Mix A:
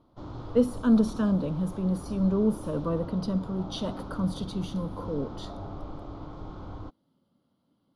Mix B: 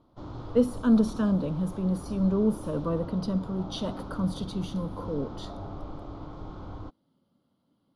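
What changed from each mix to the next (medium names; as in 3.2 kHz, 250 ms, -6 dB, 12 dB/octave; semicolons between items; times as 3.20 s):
no change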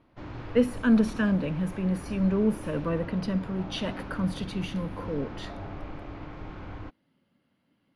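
master: add high-order bell 2.1 kHz +15 dB 1 oct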